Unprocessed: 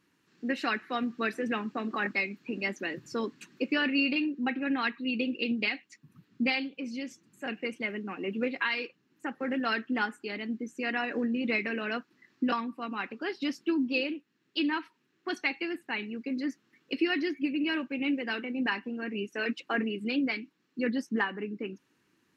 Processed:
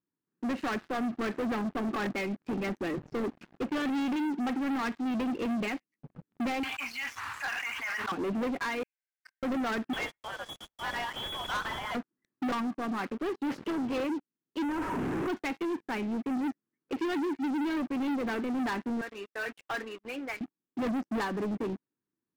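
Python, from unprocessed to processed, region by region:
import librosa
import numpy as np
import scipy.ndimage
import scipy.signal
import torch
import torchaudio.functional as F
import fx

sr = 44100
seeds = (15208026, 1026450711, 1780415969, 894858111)

y = fx.chain(x, sr, fx.cheby2_bandstop(low_hz=130.0, high_hz=540.0, order=4, stop_db=40),
    fx.low_shelf(hz=280.0, db=-9.5),
    fx.env_flatten(amount_pct=100), at=(6.63, 8.12))
y = fx.chain(y, sr, fx.crossing_spikes(level_db=-37.5),
    fx.cheby_ripple_highpass(hz=1500.0, ripple_db=9),
    fx.high_shelf(hz=2100.0, db=-12.0), at=(8.83, 9.43))
y = fx.chain(y, sr, fx.block_float(bits=3),
    fx.freq_invert(carrier_hz=3600),
    fx.band_widen(depth_pct=40), at=(9.93, 11.95))
y = fx.chain(y, sr, fx.peak_eq(hz=180.0, db=-3.5, octaves=1.9),
    fx.spectral_comp(ratio=2.0), at=(13.5, 13.94))
y = fx.chain(y, sr, fx.clip_1bit(),
    fx.lowpass(hz=1600.0, slope=6), at=(14.63, 15.28))
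y = fx.chain(y, sr, fx.highpass(hz=910.0, slope=12),
    fx.high_shelf(hz=4500.0, db=-3.0),
    fx.quant_float(bits=2), at=(19.01, 20.41))
y = scipy.signal.sosfilt(scipy.signal.bessel(2, 900.0, 'lowpass', norm='mag', fs=sr, output='sos'), y)
y = fx.leveller(y, sr, passes=5)
y = y * 10.0 ** (-8.5 / 20.0)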